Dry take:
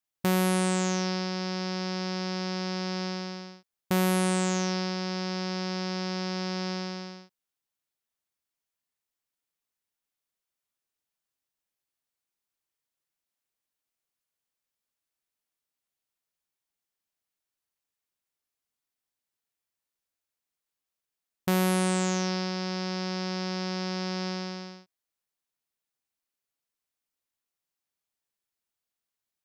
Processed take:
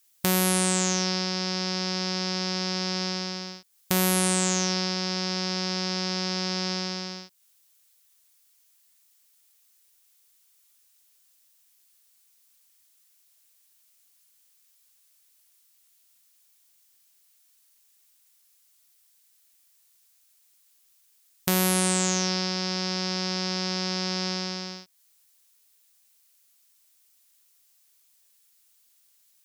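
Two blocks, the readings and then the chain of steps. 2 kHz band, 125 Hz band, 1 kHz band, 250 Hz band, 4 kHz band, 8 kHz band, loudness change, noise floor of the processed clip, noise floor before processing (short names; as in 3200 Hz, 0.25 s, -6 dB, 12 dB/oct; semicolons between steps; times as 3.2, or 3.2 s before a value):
+3.0 dB, 0.0 dB, +1.0 dB, 0.0 dB, +7.5 dB, +10.0 dB, +3.5 dB, -64 dBFS, under -85 dBFS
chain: high shelf 3500 Hz +12 dB; in parallel at -1.5 dB: limiter -28.5 dBFS, peak gain reduction 22 dB; on the sum: mismatched tape noise reduction encoder only; gain -1 dB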